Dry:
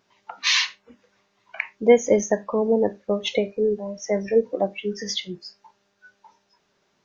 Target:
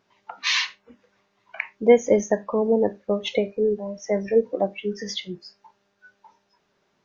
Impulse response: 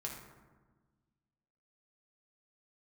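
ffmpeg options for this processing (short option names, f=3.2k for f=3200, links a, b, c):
-af "highshelf=f=4.3k:g=-7"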